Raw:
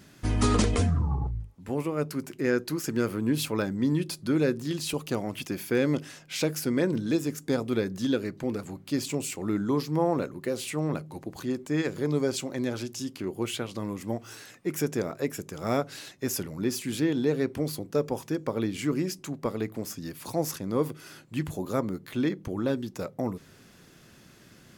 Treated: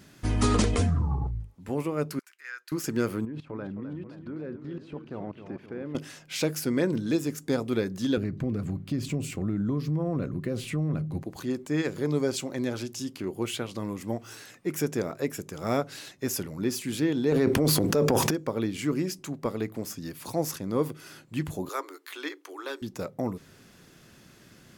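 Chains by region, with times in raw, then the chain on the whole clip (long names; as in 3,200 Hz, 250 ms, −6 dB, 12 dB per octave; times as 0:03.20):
0:02.19–0:02.72: Chebyshev high-pass filter 1,500 Hz, order 3 + high-shelf EQ 2,000 Hz −11.5 dB
0:03.25–0:05.95: low-pass filter 1,600 Hz + output level in coarse steps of 18 dB + feedback echo with a swinging delay time 263 ms, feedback 59%, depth 163 cents, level −10 dB
0:08.17–0:11.23: bass and treble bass +14 dB, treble −7 dB + downward compressor 4 to 1, threshold −25 dBFS + Butterworth band-reject 880 Hz, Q 6.7
0:17.32–0:18.31: parametric band 570 Hz +3 dB 2.8 octaves + transient designer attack −4 dB, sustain +10 dB + envelope flattener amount 70%
0:21.69–0:22.82: Chebyshev high-pass with heavy ripple 280 Hz, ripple 6 dB + tilt shelving filter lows −9 dB, about 840 Hz
whole clip: no processing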